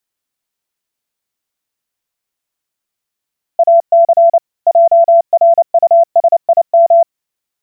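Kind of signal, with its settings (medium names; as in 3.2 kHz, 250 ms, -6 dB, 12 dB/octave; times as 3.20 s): Morse "AC JRUSIM" 29 wpm 675 Hz -3.5 dBFS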